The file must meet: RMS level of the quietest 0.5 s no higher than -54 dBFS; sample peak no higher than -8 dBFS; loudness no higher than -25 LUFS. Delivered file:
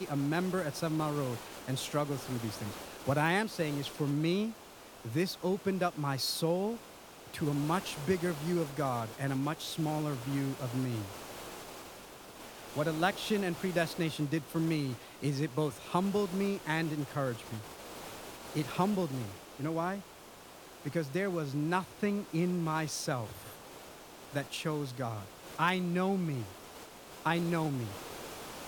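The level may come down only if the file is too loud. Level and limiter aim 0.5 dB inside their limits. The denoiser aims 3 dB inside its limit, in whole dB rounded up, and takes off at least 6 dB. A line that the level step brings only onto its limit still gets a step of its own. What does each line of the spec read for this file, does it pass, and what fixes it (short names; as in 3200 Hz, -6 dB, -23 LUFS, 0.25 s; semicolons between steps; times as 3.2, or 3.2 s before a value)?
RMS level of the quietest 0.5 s -52 dBFS: fail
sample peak -14.0 dBFS: OK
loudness -34.0 LUFS: OK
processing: denoiser 6 dB, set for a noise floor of -52 dBFS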